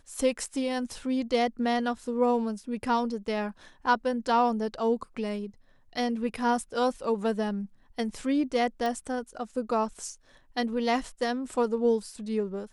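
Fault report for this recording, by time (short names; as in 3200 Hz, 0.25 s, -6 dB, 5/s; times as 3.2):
8.86 pop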